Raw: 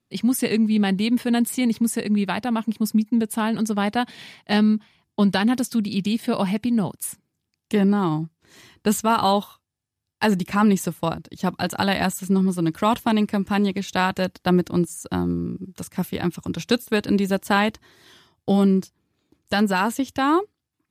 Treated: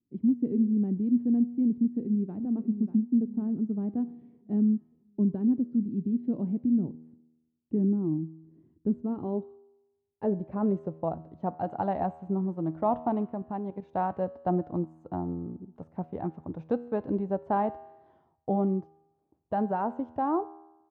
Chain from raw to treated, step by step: 6.18–6.93 s: treble shelf 2.8 kHz +10 dB; 13.27–13.94 s: level held to a coarse grid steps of 12 dB; low-pass sweep 300 Hz -> 750 Hz, 8.90–11.31 s; 1.77–2.36 s: echo throw 590 ms, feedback 45%, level -10 dB; feedback comb 80 Hz, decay 1 s, harmonics all, mix 50%; trim -5 dB

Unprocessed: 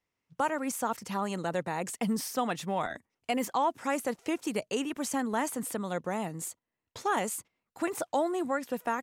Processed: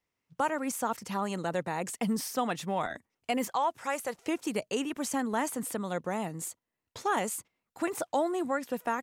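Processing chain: 3.47–4.16 s: peaking EQ 260 Hz -10.5 dB 1.1 oct

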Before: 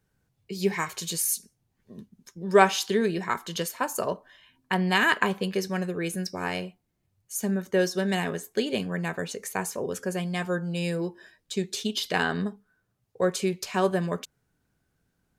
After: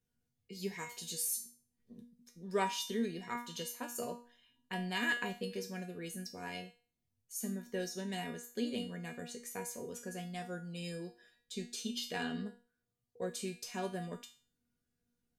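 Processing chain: peaking EQ 1.1 kHz -8 dB 1.7 oct; feedback comb 240 Hz, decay 0.39 s, harmonics all, mix 90%; trim +4 dB

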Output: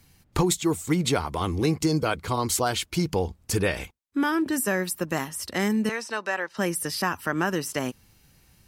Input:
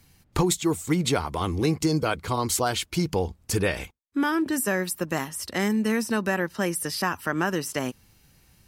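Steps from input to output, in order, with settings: 5.89–6.57 s: three-band isolator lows -21 dB, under 450 Hz, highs -20 dB, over 7.8 kHz

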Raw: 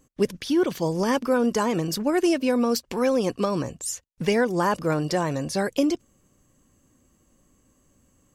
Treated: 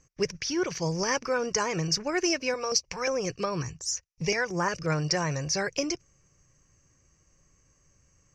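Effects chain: FFT filter 160 Hz 0 dB, 230 Hz -16 dB, 390 Hz -5 dB, 740 Hz -6 dB, 1.1 kHz -3 dB, 2.4 kHz +4 dB, 3.5 kHz -10 dB, 5.8 kHz +11 dB, 8.9 kHz -18 dB, 14 kHz -24 dB; 2.54–4.88 s: step-sequenced notch 5.6 Hz 210–6600 Hz

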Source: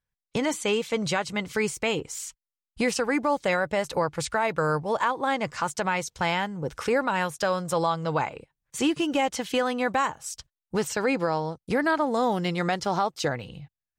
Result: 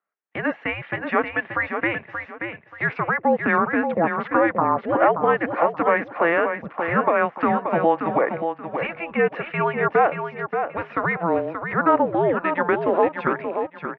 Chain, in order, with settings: mistuned SSB -340 Hz 400–2500 Hz; high-pass 310 Hz 12 dB/octave; feedback delay 580 ms, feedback 26%, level -7 dB; trim +8.5 dB

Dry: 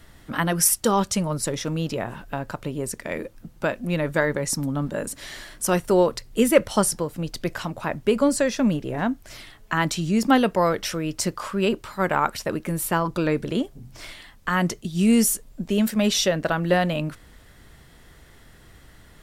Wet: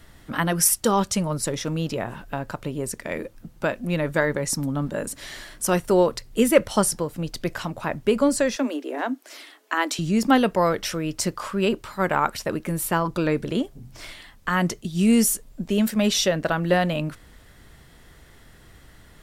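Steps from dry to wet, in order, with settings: 8.56–9.99 s: steep high-pass 250 Hz 96 dB/octave

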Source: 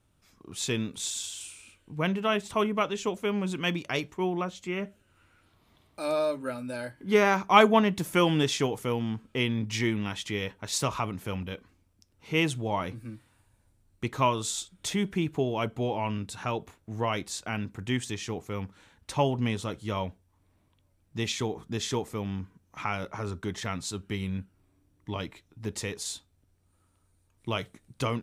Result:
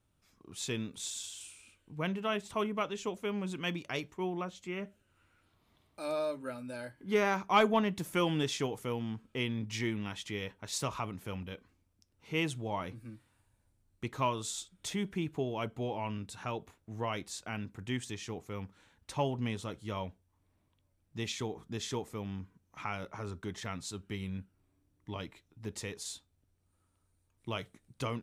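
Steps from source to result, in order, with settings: saturation -6.5 dBFS, distortion -27 dB; trim -6.5 dB

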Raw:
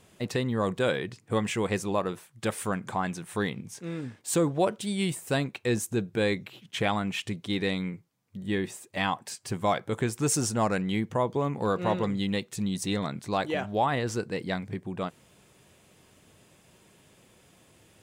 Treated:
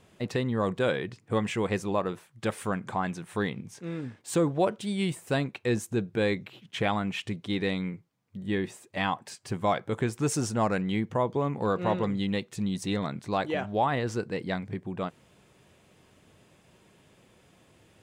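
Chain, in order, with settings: treble shelf 5.7 kHz -9 dB

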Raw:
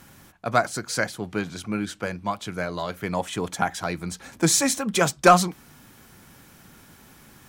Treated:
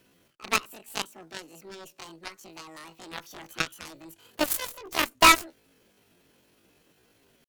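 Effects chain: bit crusher 10-bit; pitch shift +10.5 st; Chebyshev shaper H 2 -11 dB, 5 -15 dB, 7 -10 dB, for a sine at -3.5 dBFS; trim -2.5 dB

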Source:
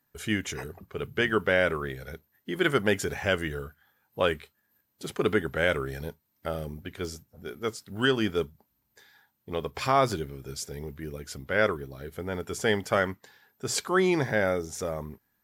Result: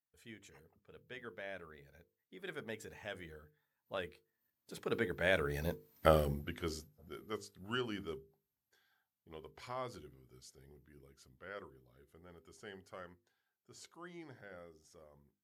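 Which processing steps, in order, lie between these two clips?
Doppler pass-by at 6.00 s, 22 m/s, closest 3.7 m; hum notches 50/100/150/200/250/300/350/400/450/500 Hz; trim +6.5 dB

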